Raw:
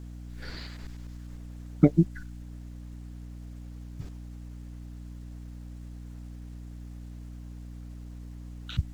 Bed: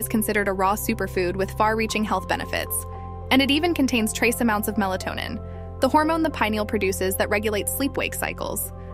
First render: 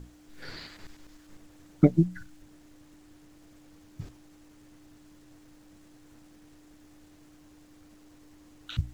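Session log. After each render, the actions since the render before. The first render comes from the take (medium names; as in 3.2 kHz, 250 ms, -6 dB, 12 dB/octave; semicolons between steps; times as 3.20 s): hum notches 60/120/180/240 Hz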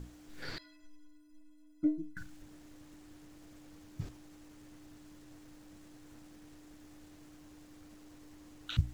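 0.58–2.17 s: inharmonic resonator 300 Hz, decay 0.41 s, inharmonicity 0.03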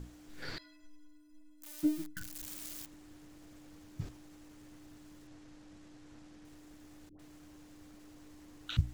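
1.62–2.86 s: zero-crossing glitches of -33 dBFS; 5.27–6.45 s: low-pass 7.1 kHz; 7.09–8.57 s: phase dispersion highs, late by 102 ms, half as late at 690 Hz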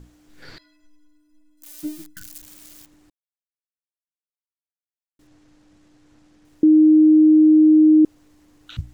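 1.57–2.39 s: treble shelf 2.7 kHz +8 dB; 3.10–5.19 s: mute; 6.63–8.05 s: bleep 310 Hz -8.5 dBFS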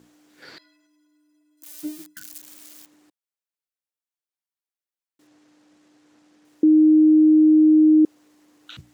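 high-pass 260 Hz 12 dB/octave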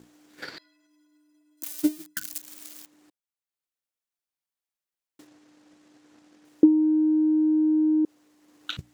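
peak limiter -18 dBFS, peak gain reduction 8 dB; transient shaper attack +11 dB, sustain -4 dB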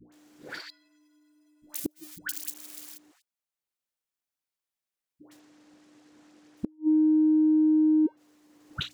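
phase dispersion highs, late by 123 ms, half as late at 800 Hz; inverted gate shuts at -16 dBFS, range -38 dB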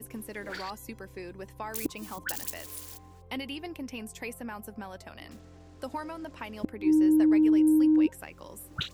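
add bed -18 dB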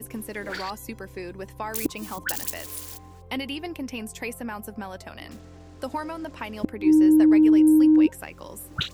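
trim +5.5 dB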